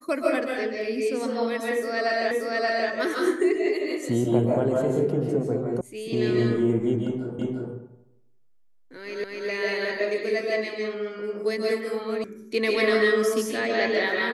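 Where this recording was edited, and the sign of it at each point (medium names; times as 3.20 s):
2.31 s: repeat of the last 0.58 s
5.81 s: sound stops dead
7.39 s: repeat of the last 0.35 s
9.24 s: repeat of the last 0.25 s
12.24 s: sound stops dead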